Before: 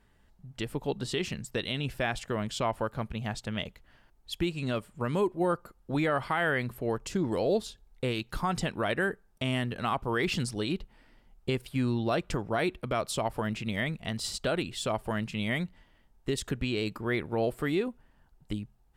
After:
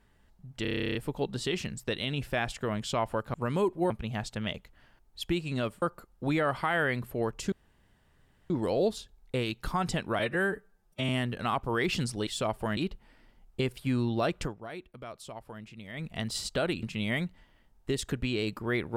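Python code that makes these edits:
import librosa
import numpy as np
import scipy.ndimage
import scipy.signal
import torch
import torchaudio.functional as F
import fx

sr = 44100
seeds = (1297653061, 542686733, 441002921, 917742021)

y = fx.edit(x, sr, fx.stutter(start_s=0.62, slice_s=0.03, count=12),
    fx.move(start_s=4.93, length_s=0.56, to_s=3.01),
    fx.insert_room_tone(at_s=7.19, length_s=0.98),
    fx.stretch_span(start_s=8.88, length_s=0.6, factor=1.5),
    fx.fade_down_up(start_s=12.3, length_s=1.67, db=-13.0, fade_s=0.15),
    fx.move(start_s=14.72, length_s=0.5, to_s=10.66), tone=tone)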